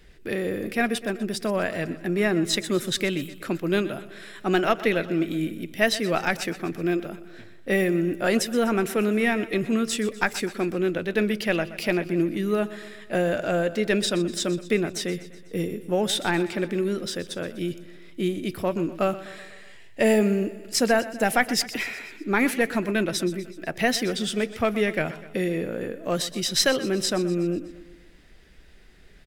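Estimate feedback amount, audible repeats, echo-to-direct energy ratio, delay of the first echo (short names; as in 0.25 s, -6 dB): 57%, 4, -14.5 dB, 0.124 s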